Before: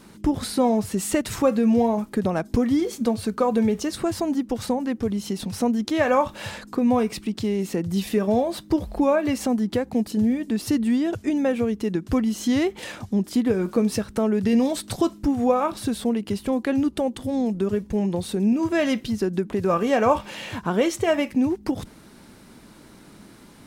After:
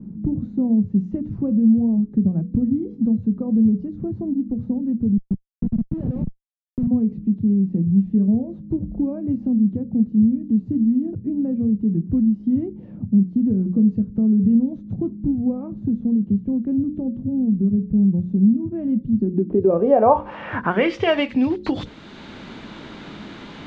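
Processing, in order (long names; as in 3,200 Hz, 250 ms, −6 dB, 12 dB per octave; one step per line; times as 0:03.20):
hearing-aid frequency compression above 3,300 Hz 1.5 to 1
low-shelf EQ 67 Hz −3 dB
mains-hum notches 60/120/180/240/300/360/420/480/540 Hz
0:05.17–0:06.87: comparator with hysteresis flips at −20.5 dBFS
low-pass filter sweep 190 Hz → 3,500 Hz, 0:19.11–0:21.12
multiband upward and downward compressor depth 40%
level +2.5 dB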